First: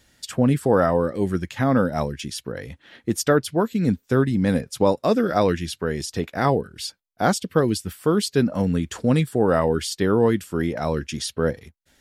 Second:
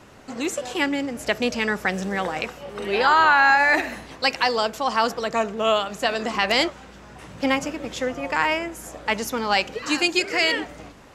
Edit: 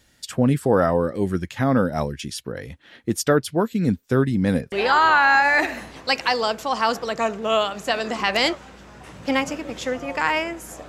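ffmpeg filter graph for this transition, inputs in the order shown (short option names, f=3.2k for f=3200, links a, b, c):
-filter_complex "[0:a]apad=whole_dur=10.88,atrim=end=10.88,atrim=end=4.722[a];[1:a]atrim=start=2.868:end=9.03[b];[a][b]acrossfade=d=0.004:c1=hsin:c2=hsin"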